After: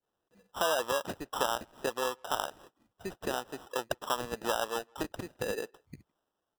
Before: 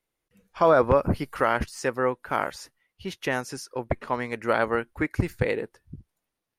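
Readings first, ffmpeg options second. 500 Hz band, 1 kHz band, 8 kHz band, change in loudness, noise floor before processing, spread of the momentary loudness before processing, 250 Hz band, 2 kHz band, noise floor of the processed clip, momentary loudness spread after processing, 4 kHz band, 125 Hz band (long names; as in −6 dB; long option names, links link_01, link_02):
−9.5 dB, −7.0 dB, +2.0 dB, −8.5 dB, −84 dBFS, 14 LU, −12.0 dB, −8.0 dB, −85 dBFS, 9 LU, +3.5 dB, −17.5 dB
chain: -filter_complex "[0:a]adynamicequalizer=threshold=0.0282:dfrequency=1000:dqfactor=0.71:tfrequency=1000:tqfactor=0.71:attack=5:release=100:ratio=0.375:range=2.5:mode=boostabove:tftype=bell,acompressor=threshold=-34dB:ratio=4,bandpass=frequency=800:width_type=q:width=0.74:csg=0,acrusher=samples=20:mix=1:aa=0.000001,asplit=2[link_01][link_02];[link_02]adelay=160,highpass=300,lowpass=3400,asoftclip=type=hard:threshold=-33dB,volume=-29dB[link_03];[link_01][link_03]amix=inputs=2:normalize=0,volume=5dB"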